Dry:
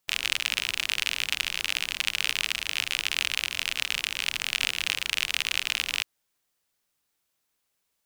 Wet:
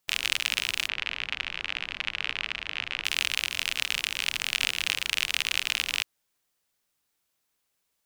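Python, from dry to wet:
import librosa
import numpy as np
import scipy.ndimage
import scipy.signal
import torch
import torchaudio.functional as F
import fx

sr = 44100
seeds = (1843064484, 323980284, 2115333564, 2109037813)

y = fx.lowpass(x, sr, hz=2600.0, slope=12, at=(0.87, 3.04), fade=0.02)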